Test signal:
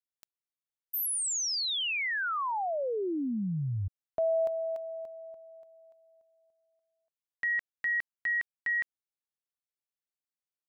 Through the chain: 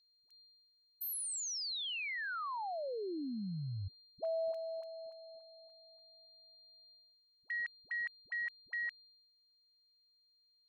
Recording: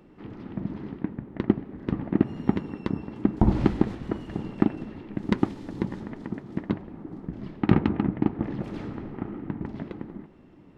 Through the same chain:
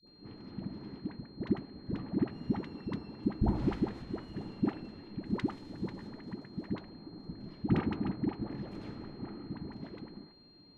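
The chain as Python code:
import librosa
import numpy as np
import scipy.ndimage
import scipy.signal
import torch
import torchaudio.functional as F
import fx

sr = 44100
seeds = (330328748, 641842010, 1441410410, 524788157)

y = fx.dispersion(x, sr, late='highs', ms=74.0, hz=500.0)
y = y + 10.0 ** (-51.0 / 20.0) * np.sin(2.0 * np.pi * 4200.0 * np.arange(len(y)) / sr)
y = fx.gate_hold(y, sr, open_db=-45.0, close_db=-51.0, hold_ms=71.0, range_db=-11, attack_ms=9.7, release_ms=322.0)
y = F.gain(torch.from_numpy(y), -8.5).numpy()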